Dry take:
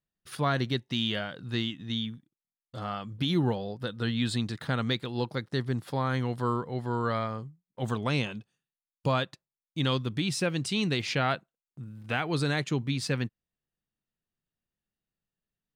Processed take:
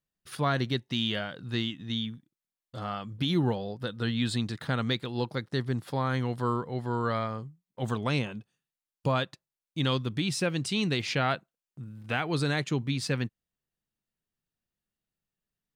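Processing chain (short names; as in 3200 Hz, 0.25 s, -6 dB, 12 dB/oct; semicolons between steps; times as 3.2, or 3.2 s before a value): 8.18–9.16 dynamic EQ 4200 Hz, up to -7 dB, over -49 dBFS, Q 0.76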